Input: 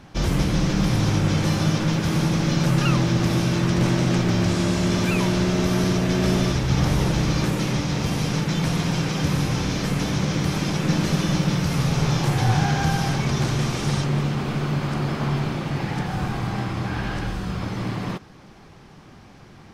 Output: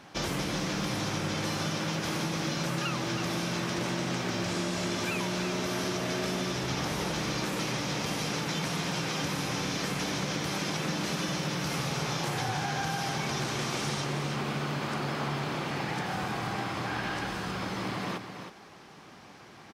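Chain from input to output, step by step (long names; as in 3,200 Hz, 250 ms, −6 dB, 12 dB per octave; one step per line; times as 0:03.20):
high-pass filter 440 Hz 6 dB per octave
on a send: single-tap delay 320 ms −9.5 dB
on the sum: downward compressor, threshold −28 dBFS, peak gain reduction 7 dB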